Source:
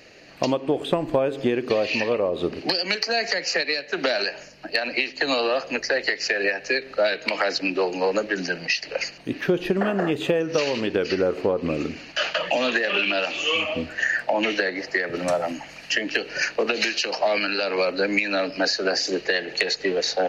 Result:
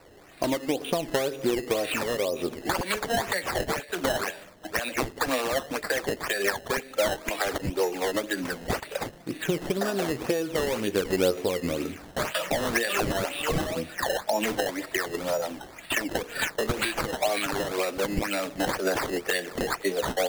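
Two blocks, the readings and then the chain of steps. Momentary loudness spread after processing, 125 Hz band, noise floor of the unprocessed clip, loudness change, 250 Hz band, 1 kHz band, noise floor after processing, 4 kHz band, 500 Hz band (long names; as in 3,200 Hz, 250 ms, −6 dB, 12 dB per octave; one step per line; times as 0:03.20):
5 LU, 0.0 dB, −44 dBFS, −4.5 dB, −3.5 dB, −1.5 dB, −48 dBFS, −7.0 dB, −4.0 dB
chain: flanger 0.13 Hz, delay 1.9 ms, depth 9.7 ms, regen +46%
sample-and-hold swept by an LFO 13×, swing 100% 2 Hz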